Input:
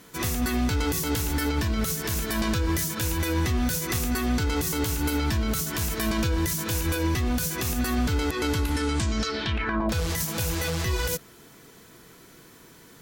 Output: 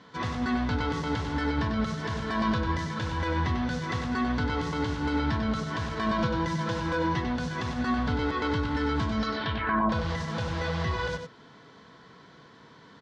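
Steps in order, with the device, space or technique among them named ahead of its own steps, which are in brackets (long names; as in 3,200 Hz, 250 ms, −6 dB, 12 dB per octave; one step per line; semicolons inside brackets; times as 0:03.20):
notch filter 1,200 Hz, Q 7.5
0:06.18–0:07.25: comb filter 5.9 ms, depth 60%
guitar cabinet (loudspeaker in its box 98–4,300 Hz, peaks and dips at 350 Hz −8 dB, 1,100 Hz +8 dB, 2,500 Hz −8 dB)
dynamic equaliser 4,400 Hz, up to −4 dB, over −46 dBFS, Q 0.93
single-tap delay 96 ms −7 dB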